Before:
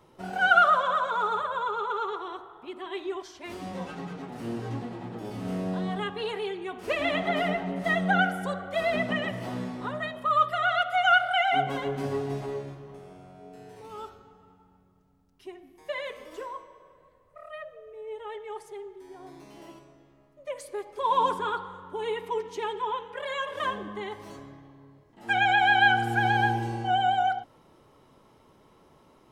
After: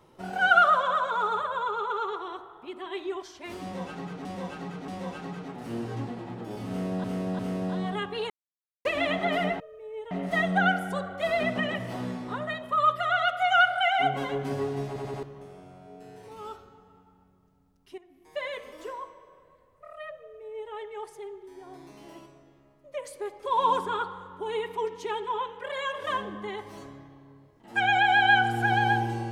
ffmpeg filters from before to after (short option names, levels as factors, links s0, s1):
-filter_complex "[0:a]asplit=14[s0][s1][s2][s3][s4][s5][s6][s7][s8][s9][s10][s11][s12][s13];[s0]atrim=end=4.252[s14];[s1]atrim=start=3.618:end=4.252[s15];[s2]atrim=start=3.618:end=5.782[s16];[s3]atrim=start=5.428:end=5.782[s17];[s4]atrim=start=5.428:end=6.34,asetpts=PTS-STARTPTS,afade=t=out:st=0.908:d=0.004:c=hsin[s18];[s5]atrim=start=6.34:end=6.89,asetpts=PTS-STARTPTS,volume=0[s19];[s6]atrim=start=6.89:end=7.642,asetpts=PTS-STARTPTS,afade=t=in:d=0.004:c=hsin[s20];[s7]atrim=start=17.738:end=18.252[s21];[s8]atrim=start=7.638:end=12.492[s22];[s9]atrim=start=12.398:end=12.492[s23];[s10]atrim=start=12.398:end=12.492[s24];[s11]atrim=start=12.398:end=12.492[s25];[s12]atrim=start=12.758:end=15.51,asetpts=PTS-STARTPTS,afade=t=out:st=2.748:d=0.004:c=hsin:silence=0.223872[s26];[s13]atrim=start=15.51,asetpts=PTS-STARTPTS,afade=t=in:d=0.39:silence=0.223872[s27];[s14][s15]acrossfade=d=0.004:c1=hsin:c2=hsin[s28];[s28][s16]acrossfade=d=0.004:c1=hsin:c2=hsin[s29];[s29][s17]acrossfade=d=0.004:c1=hsin:c2=hsin[s30];[s18][s19][s20]concat=n=3:v=0:a=1[s31];[s30][s31]acrossfade=d=0.004:c1=hsin:c2=hsin[s32];[s32][s21]acrossfade=d=0.004:c1=hsin:c2=hsin[s33];[s33][s22]acrossfade=d=0.004:c1=hsin:c2=hsin[s34];[s34][s23]acrossfade=d=0.004:c1=hsin:c2=hsin[s35];[s35][s24]acrossfade=d=0.004:c1=hsin:c2=hsin[s36];[s36][s25]acrossfade=d=0.004:c1=hsin:c2=hsin[s37];[s26][s27]concat=n=2:v=0:a=1[s38];[s37][s38]acrossfade=d=0.004:c1=hsin:c2=hsin"